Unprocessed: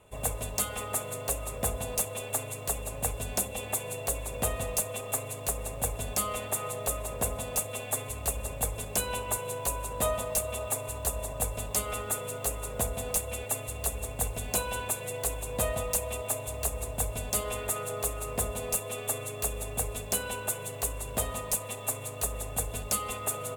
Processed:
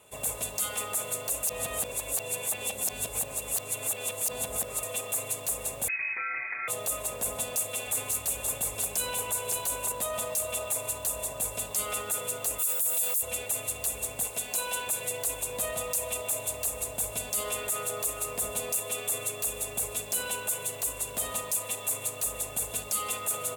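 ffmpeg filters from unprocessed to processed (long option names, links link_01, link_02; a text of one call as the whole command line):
ffmpeg -i in.wav -filter_complex "[0:a]asettb=1/sr,asplit=3[link_01][link_02][link_03];[link_01]atrim=end=5.884[link_04];[link_02]atrim=start=5.88:end=6.68,asetpts=PTS-STARTPTS,afade=type=in:duration=0.004:curve=qsin,afade=type=out:start_time=0.796:duration=0.004:curve=qsin,lowpass=frequency=2200:width_type=q:width=0.5098,lowpass=frequency=2200:width_type=q:width=0.6013,lowpass=frequency=2200:width_type=q:width=0.9,lowpass=frequency=2200:width_type=q:width=2.563,afreqshift=-2600[link_05];[link_03]atrim=start=6.676[link_06];[link_04][link_05]acrossfade=duration=0.004:curve1=hsin:curve2=qsin[link_07];[link_07][link_06]acrossfade=duration=0.004:curve1=qsin:curve2=hsin,asettb=1/sr,asplit=3[link_08][link_09][link_10];[link_08]atrim=end=7.304[link_11];[link_09]atrim=start=7.3:end=9.92,asetpts=PTS-STARTPTS,afade=type=in:duration=0.004:curve=qsin,afade=type=out:start_time=2.616:duration=0.004:curve=qsin,aecho=1:1:557:0.422,atrim=end_sample=115542[link_12];[link_10]atrim=start=9.916[link_13];[link_11][link_12]acrossfade=duration=0.004:curve1=hsin:curve2=qsin[link_14];[link_14][link_13]acrossfade=duration=0.004:curve1=qsin:curve2=hsin,asplit=3[link_15][link_16][link_17];[link_15]afade=type=out:start_time=12.58:duration=0.02[link_18];[link_16]aemphasis=mode=production:type=riaa,afade=type=in:start_time=12.58:duration=0.02,afade=type=out:start_time=13.21:duration=0.02[link_19];[link_17]afade=type=in:start_time=13.21:duration=0.02[link_20];[link_18][link_19][link_20]amix=inputs=3:normalize=0,asettb=1/sr,asplit=3[link_21][link_22][link_23];[link_21]atrim=end=14.244[link_24];[link_22]atrim=start=14.24:end=14.87,asetpts=PTS-STARTPTS,afade=type=in:duration=0.004:curve=qsin,afade=type=out:start_time=0.626:duration=0.004:curve=qsin,lowshelf=frequency=180:gain=-10[link_25];[link_23]atrim=start=14.866[link_26];[link_24][link_25]acrossfade=duration=0.004:curve1=hsin:curve2=qsin[link_27];[link_27][link_26]acrossfade=duration=0.004:curve1=qsin:curve2=hsin,asplit=3[link_28][link_29][link_30];[link_28]atrim=end=1.432[link_31];[link_29]atrim=start=1.428:end=4.832,asetpts=PTS-STARTPTS,areverse[link_32];[link_30]atrim=start=4.828[link_33];[link_31][link_32]acrossfade=duration=0.004:curve1=hsin:curve2=hsin[link_34];[link_34][link_33]acrossfade=duration=0.004:curve1=hsin:curve2=hsin,highpass=frequency=210:poles=1,alimiter=level_in=3dB:limit=-24dB:level=0:latency=1:release=16,volume=-3dB,highshelf=frequency=3200:gain=10" out.wav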